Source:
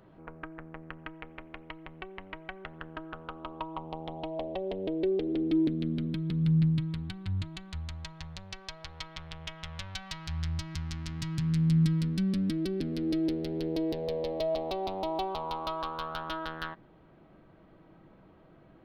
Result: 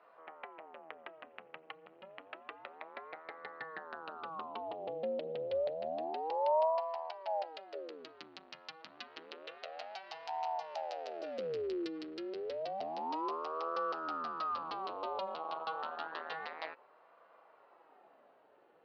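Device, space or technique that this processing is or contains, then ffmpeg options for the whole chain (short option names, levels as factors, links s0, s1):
voice changer toy: -af "aeval=exprs='val(0)*sin(2*PI*490*n/s+490*0.7/0.29*sin(2*PI*0.29*n/s))':c=same,highpass=590,equalizer=f=970:t=q:w=4:g=-5,equalizer=f=1600:t=q:w=4:g=-4,equalizer=f=2200:t=q:w=4:g=-6,equalizer=f=3500:t=q:w=4:g=-7,lowpass=f=4300:w=0.5412,lowpass=f=4300:w=1.3066,volume=1.19"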